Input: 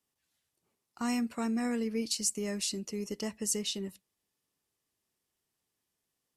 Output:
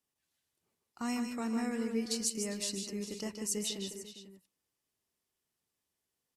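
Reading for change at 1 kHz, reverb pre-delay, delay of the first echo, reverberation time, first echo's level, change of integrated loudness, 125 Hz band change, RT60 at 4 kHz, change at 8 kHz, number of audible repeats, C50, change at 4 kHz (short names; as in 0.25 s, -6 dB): -2.5 dB, none, 0.151 s, none, -6.5 dB, -2.5 dB, -2.5 dB, none, -2.5 dB, 3, none, -2.5 dB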